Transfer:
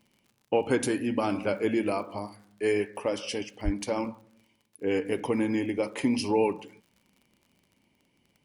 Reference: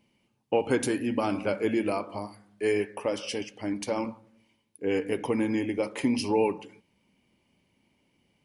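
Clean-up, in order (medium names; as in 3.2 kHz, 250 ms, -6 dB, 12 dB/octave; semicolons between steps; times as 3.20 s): de-click; 3.64–3.76 s: high-pass 140 Hz 24 dB/octave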